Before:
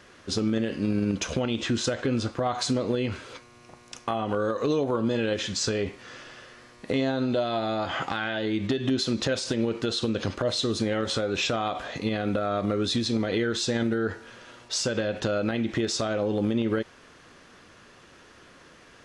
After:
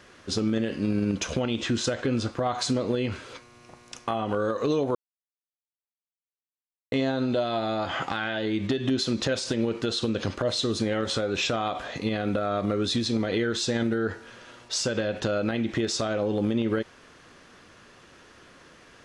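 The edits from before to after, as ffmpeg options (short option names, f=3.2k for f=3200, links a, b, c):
-filter_complex "[0:a]asplit=3[a][b][c];[a]atrim=end=4.95,asetpts=PTS-STARTPTS,afade=t=out:st=4.946:d=0.004:c=hsin[d];[b]atrim=start=4.95:end=6.92,asetpts=PTS-STARTPTS,volume=0[e];[c]atrim=start=6.92,asetpts=PTS-STARTPTS,afade=t=in:d=0.004:c=hsin[f];[d][e][f]concat=n=3:v=0:a=1"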